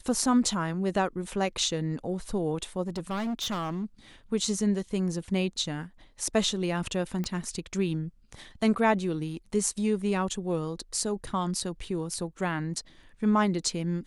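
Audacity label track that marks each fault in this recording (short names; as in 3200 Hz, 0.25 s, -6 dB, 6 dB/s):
2.870000	3.850000	clipped -28 dBFS
7.240000	7.240000	pop -20 dBFS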